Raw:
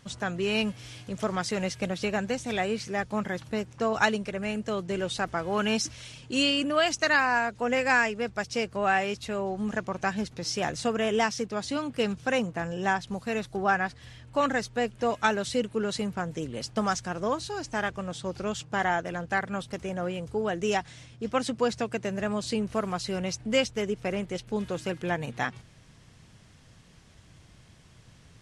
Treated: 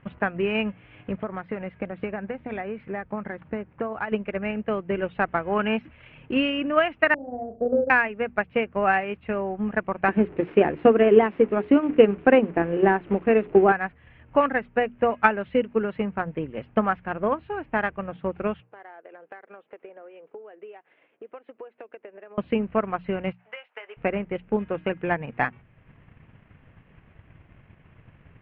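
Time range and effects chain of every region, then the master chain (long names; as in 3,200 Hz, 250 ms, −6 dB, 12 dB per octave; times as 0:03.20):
0:01.16–0:04.12: parametric band 2,800 Hz −5.5 dB 0.57 octaves + downward compressor 3 to 1, threshold −32 dBFS
0:07.14–0:07.90: Butterworth low-pass 670 Hz 72 dB per octave + flutter between parallel walls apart 6.3 metres, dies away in 0.39 s
0:10.08–0:13.72: linear delta modulator 64 kbit/s, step −37 dBFS + parametric band 350 Hz +13 dB 1.1 octaves + mains-hum notches 60/120/180/240/300/360/420 Hz
0:18.60–0:22.38: four-pole ladder high-pass 340 Hz, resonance 40% + downward compressor 4 to 1, threshold −46 dBFS
0:23.32–0:23.97: high-pass filter 690 Hz 24 dB per octave + downward compressor, threshold −39 dBFS + double-tracking delay 22 ms −10.5 dB
whole clip: Butterworth low-pass 2,700 Hz 48 dB per octave; mains-hum notches 60/120/180/240 Hz; transient designer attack +6 dB, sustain −5 dB; level +2 dB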